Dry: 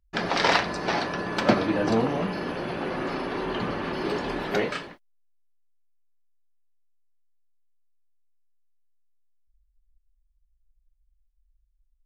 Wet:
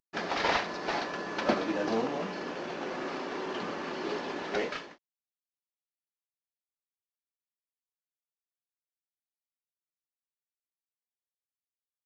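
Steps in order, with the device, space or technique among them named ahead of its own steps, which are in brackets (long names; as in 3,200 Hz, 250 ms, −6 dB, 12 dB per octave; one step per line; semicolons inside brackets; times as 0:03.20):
early wireless headset (high-pass filter 240 Hz 12 dB per octave; variable-slope delta modulation 32 kbit/s)
level −5 dB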